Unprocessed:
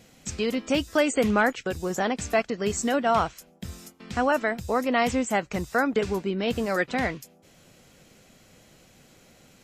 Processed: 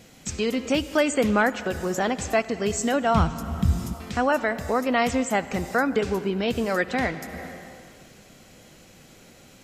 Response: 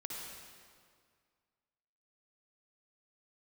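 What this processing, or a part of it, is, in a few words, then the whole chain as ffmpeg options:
ducked reverb: -filter_complex "[0:a]asplit=3[link_01][link_02][link_03];[1:a]atrim=start_sample=2205[link_04];[link_02][link_04]afir=irnorm=-1:irlink=0[link_05];[link_03]apad=whole_len=425043[link_06];[link_05][link_06]sidechaincompress=threshold=-34dB:ratio=4:attack=6.5:release=372,volume=0dB[link_07];[link_01][link_07]amix=inputs=2:normalize=0,asplit=3[link_08][link_09][link_10];[link_08]afade=type=out:start_time=3.13:duration=0.02[link_11];[link_09]asubboost=boost=8:cutoff=220,afade=type=in:start_time=3.13:duration=0.02,afade=type=out:start_time=3.93:duration=0.02[link_12];[link_10]afade=type=in:start_time=3.93:duration=0.02[link_13];[link_11][link_12][link_13]amix=inputs=3:normalize=0"

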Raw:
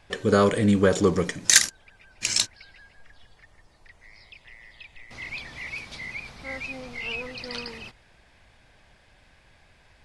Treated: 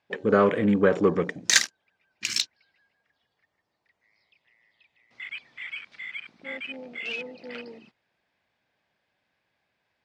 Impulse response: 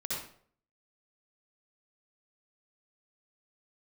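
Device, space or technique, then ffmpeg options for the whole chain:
over-cleaned archive recording: -af "highpass=170,lowpass=5500,afwtdn=0.0158"

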